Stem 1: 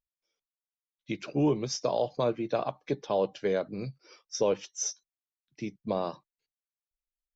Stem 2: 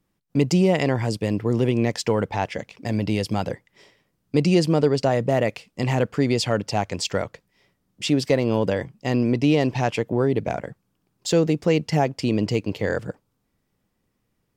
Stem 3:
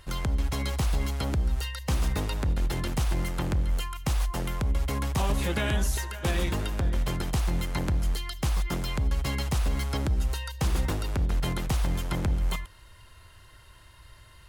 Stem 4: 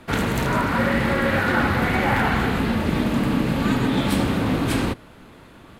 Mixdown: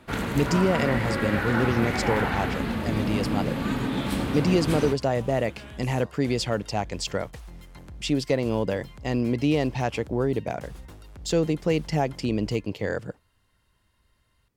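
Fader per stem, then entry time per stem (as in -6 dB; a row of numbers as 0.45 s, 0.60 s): -18.0 dB, -4.0 dB, -16.5 dB, -6.5 dB; 0.00 s, 0.00 s, 0.00 s, 0.00 s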